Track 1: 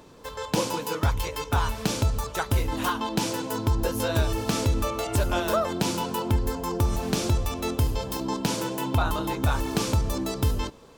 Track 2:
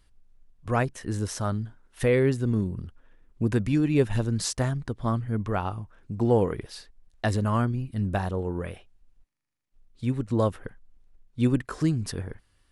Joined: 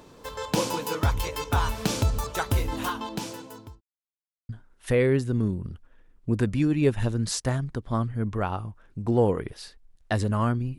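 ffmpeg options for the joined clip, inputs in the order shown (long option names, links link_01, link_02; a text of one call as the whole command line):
ffmpeg -i cue0.wav -i cue1.wav -filter_complex "[0:a]apad=whole_dur=10.78,atrim=end=10.78,asplit=2[link_01][link_02];[link_01]atrim=end=3.81,asetpts=PTS-STARTPTS,afade=type=out:start_time=2.47:duration=1.34[link_03];[link_02]atrim=start=3.81:end=4.49,asetpts=PTS-STARTPTS,volume=0[link_04];[1:a]atrim=start=1.62:end=7.91,asetpts=PTS-STARTPTS,afade=type=in:duration=0.004:curve=hsin[link_05];[link_03][link_04][link_05]concat=n=3:v=0:a=1" out.wav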